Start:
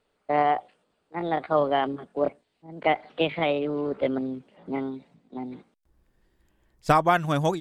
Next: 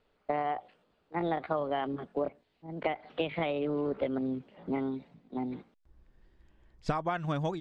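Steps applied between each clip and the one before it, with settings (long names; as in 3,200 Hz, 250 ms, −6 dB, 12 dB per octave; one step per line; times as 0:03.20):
low-pass filter 4,800 Hz 12 dB per octave
low-shelf EQ 88 Hz +7 dB
downward compressor 16 to 1, threshold −27 dBFS, peak gain reduction 14 dB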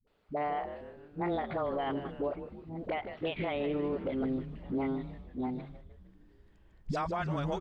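all-pass dispersion highs, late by 73 ms, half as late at 340 Hz
on a send: echo with shifted repeats 154 ms, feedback 57%, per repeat −110 Hz, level −12 dB
on the sum: brickwall limiter −24.5 dBFS, peak gain reduction 6.5 dB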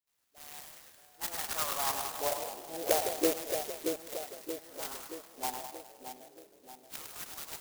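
auto-filter high-pass saw down 0.3 Hz 340–4,800 Hz
echo with a time of its own for lows and highs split 740 Hz, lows 627 ms, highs 103 ms, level −5 dB
converter with an unsteady clock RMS 0.15 ms
level +2 dB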